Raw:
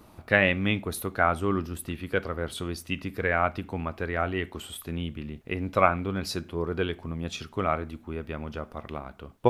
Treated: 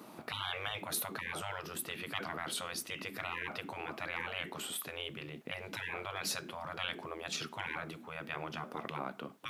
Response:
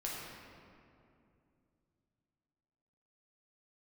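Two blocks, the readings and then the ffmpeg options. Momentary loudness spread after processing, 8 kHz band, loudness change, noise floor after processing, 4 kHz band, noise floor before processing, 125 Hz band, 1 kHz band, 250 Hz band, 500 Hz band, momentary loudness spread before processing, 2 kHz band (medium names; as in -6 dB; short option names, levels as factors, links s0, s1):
6 LU, +1.0 dB, -10.5 dB, -53 dBFS, -1.5 dB, -54 dBFS, -17.0 dB, -11.5 dB, -16.5 dB, -16.0 dB, 14 LU, -10.0 dB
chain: -af "highpass=f=170:w=0.5412,highpass=f=170:w=1.3066,afftfilt=real='re*lt(hypot(re,im),0.0501)':imag='im*lt(hypot(re,im),0.0501)':win_size=1024:overlap=0.75,areverse,acompressor=mode=upward:threshold=0.002:ratio=2.5,areverse,volume=1.33"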